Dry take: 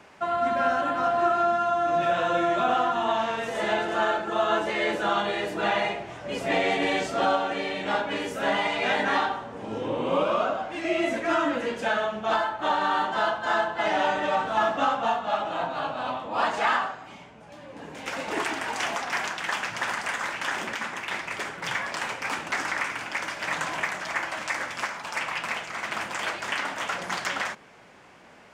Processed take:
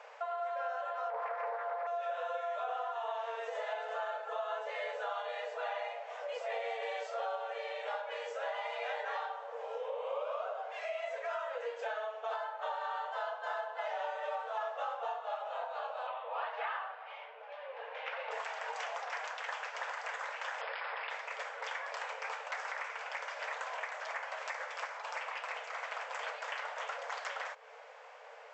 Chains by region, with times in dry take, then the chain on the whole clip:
1.10–1.87 s: treble shelf 2.1 kHz -11 dB + loudspeaker Doppler distortion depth 0.56 ms
16.07–18.31 s: low-pass 3.2 kHz 24 dB/octave + tilt EQ +2.5 dB/octave
20.61–21.10 s: brick-wall FIR band-pass 180–5300 Hz + level flattener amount 100%
whole clip: FFT band-pass 440–8000 Hz; tilt EQ -2.5 dB/octave; compression 3:1, threshold -40 dBFS

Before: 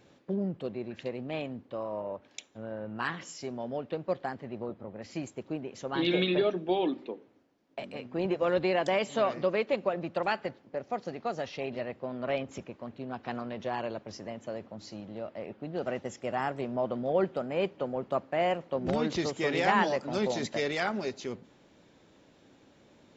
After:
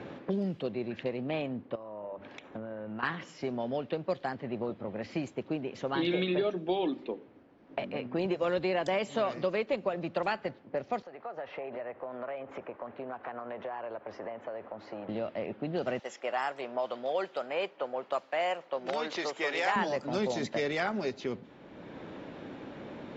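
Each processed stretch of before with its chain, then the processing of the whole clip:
1.75–3.03 s: compression 8:1, threshold -46 dBFS + hum notches 50/100/150/200/250/300/350/400/450 Hz
11.02–15.09 s: three-band isolator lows -18 dB, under 430 Hz, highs -16 dB, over 2 kHz + compression 4:1, threshold -46 dBFS
15.99–19.76 s: high-pass 600 Hz + treble shelf 6.3 kHz +12 dB
whole clip: level-controlled noise filter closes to 1.9 kHz, open at -24 dBFS; three bands compressed up and down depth 70%

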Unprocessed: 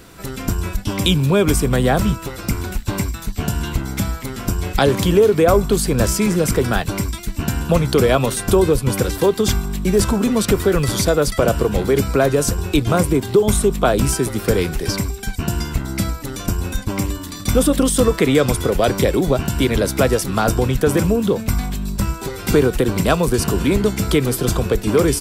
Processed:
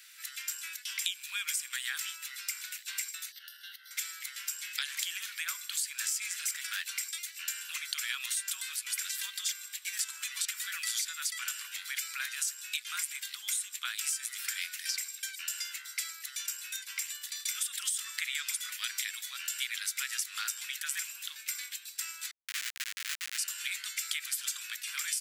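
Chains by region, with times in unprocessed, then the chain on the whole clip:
3.32–3.91 s: compression 4:1, threshold -26 dBFS + static phaser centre 1.6 kHz, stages 8
6.20–6.96 s: high-pass 560 Hz 24 dB/octave + overload inside the chain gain 17 dB
22.31–23.38 s: CVSD coder 32 kbps + Schmitt trigger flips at -15.5 dBFS
whole clip: steep high-pass 1.7 kHz 36 dB/octave; dynamic bell 7.3 kHz, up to +5 dB, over -40 dBFS, Q 3.2; compression, threshold -25 dBFS; trim -5 dB

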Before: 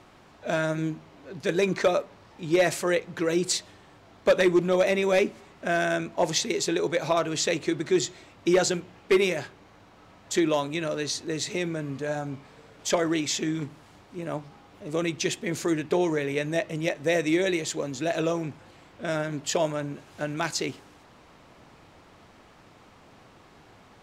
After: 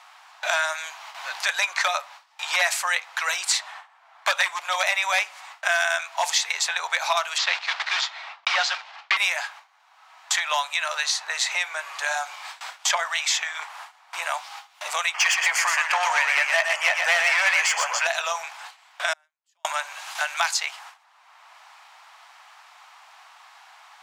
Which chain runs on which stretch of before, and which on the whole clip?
7.38–9.17 s: block-companded coder 3-bit + low-pass 4.8 kHz 24 dB/octave
15.14–18.07 s: Butterworth band-stop 3.8 kHz, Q 3.3 + overdrive pedal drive 20 dB, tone 2.6 kHz, clips at -11.5 dBFS + delay 121 ms -5 dB
19.13–19.65 s: inverted gate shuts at -32 dBFS, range -39 dB + treble shelf 10 kHz +5 dB
whole clip: gate with hold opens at -40 dBFS; steep high-pass 760 Hz 48 dB/octave; three bands compressed up and down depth 70%; trim +7.5 dB

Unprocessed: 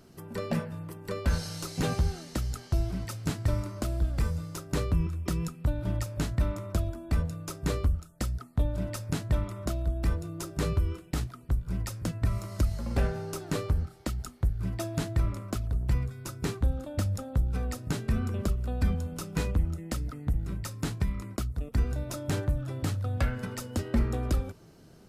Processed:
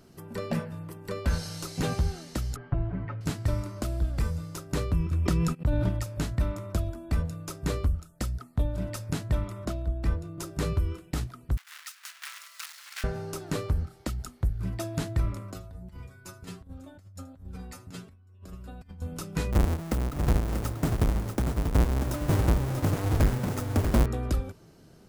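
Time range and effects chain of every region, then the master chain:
2.56–3.21 s: low-pass 2 kHz 24 dB/octave + comb 7 ms, depth 86%
5.11–5.89 s: gate -42 dBFS, range -44 dB + treble shelf 7.2 kHz -7.5 dB + level flattener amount 70%
9.65–10.38 s: treble shelf 6.2 kHz -8.5 dB + three bands expanded up and down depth 40%
11.57–13.04 s: block-companded coder 3-bit + high-pass 1.4 kHz 24 dB/octave + treble shelf 7.5 kHz -5.5 dB
15.52–19.02 s: inharmonic resonator 90 Hz, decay 0.32 s, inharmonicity 0.002 + delay 79 ms -19.5 dB + compressor with a negative ratio -42 dBFS, ratio -0.5
19.52–24.06 s: square wave that keeps the level + peaking EQ 3.3 kHz -6 dB 2.2 oct + delay 638 ms -6.5 dB
whole clip: none

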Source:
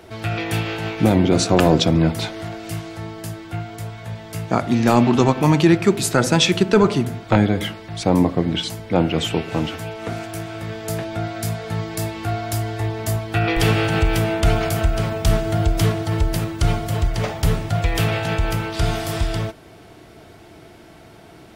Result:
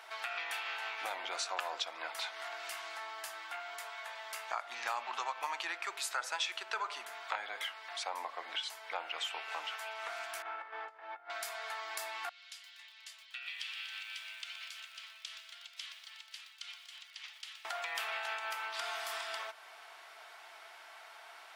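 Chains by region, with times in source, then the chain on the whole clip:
10.42–11.30 s: low-pass 1.5 kHz + compressor with a negative ratio -32 dBFS, ratio -0.5 + comb 2.3 ms, depth 49%
12.29–17.65 s: ladder band-pass 4 kHz, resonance 30% + bit-crushed delay 121 ms, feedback 80%, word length 8-bit, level -10 dB
whole clip: high-pass 890 Hz 24 dB/octave; treble shelf 4.3 kHz -8 dB; compression 2.5:1, threshold -40 dBFS

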